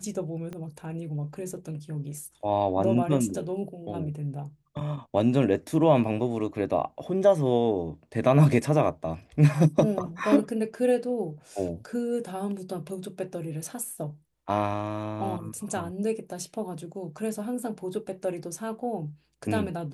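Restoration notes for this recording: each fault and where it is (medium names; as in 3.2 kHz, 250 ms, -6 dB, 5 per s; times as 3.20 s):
0.53 s: pop -25 dBFS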